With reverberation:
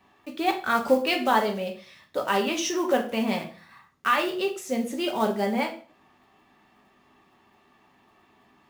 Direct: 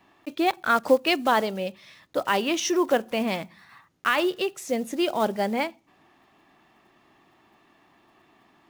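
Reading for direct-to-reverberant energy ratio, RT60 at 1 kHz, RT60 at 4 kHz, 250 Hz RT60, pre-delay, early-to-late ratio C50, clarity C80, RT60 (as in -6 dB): 1.5 dB, 0.40 s, 0.40 s, 0.50 s, 3 ms, 10.5 dB, 15.0 dB, 0.45 s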